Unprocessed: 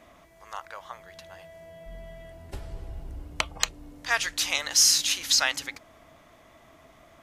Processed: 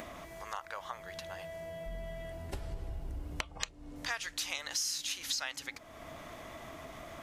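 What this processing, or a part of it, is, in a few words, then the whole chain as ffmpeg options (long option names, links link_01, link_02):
upward and downward compression: -filter_complex "[0:a]asettb=1/sr,asplit=3[link_01][link_02][link_03];[link_01]atrim=end=3.404[link_04];[link_02]atrim=start=3.4:end=3.96,asetpts=PTS-STARTPTS,afade=type=in:duration=0.004:curve=qsin,afade=type=out:start_time=0.556:duration=0.004:curve=qsin,lowpass=9000[link_05];[link_03]atrim=start=3.956[link_06];[link_04][link_05]acrossfade=duration=0.004:curve1=hsin:curve2=qsin[link_07];[link_07][link_06]acrossfade=duration=0.004:curve1=qsin:curve2=hsin,acompressor=mode=upward:threshold=-41dB:ratio=2.5,acompressor=threshold=-38dB:ratio=4,volume=2dB"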